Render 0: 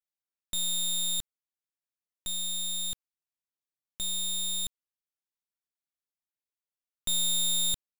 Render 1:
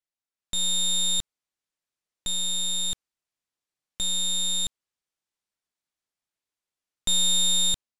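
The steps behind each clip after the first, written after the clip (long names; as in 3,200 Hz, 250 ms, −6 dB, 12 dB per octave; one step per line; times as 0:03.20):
low-pass filter 9,300 Hz 12 dB per octave
automatic gain control gain up to 6.5 dB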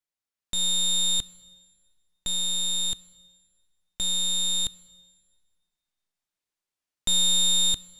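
dense smooth reverb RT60 1.9 s, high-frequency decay 0.85×, DRR 18.5 dB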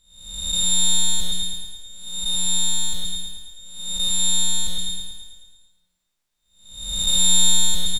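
spectrum smeared in time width 487 ms
repeating echo 110 ms, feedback 59%, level −3.5 dB
level +7.5 dB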